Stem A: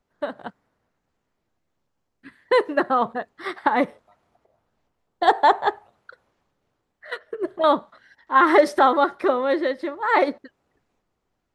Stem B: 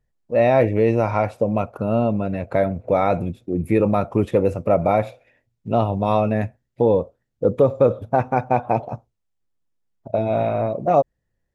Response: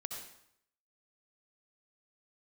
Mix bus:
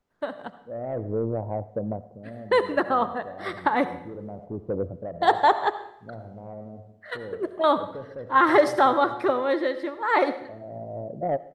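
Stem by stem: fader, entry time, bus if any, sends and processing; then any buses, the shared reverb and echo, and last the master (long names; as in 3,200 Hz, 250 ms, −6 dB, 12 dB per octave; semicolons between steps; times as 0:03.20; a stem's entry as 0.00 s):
−5.5 dB, 0.00 s, send −5 dB, no processing
−9.0 dB, 0.35 s, send −12 dB, adaptive Wiener filter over 25 samples; Butterworth low-pass 830 Hz 36 dB per octave; soft clipping −9 dBFS, distortion −20 dB; automatic ducking −19 dB, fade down 0.30 s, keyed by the first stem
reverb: on, RT60 0.70 s, pre-delay 58 ms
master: no processing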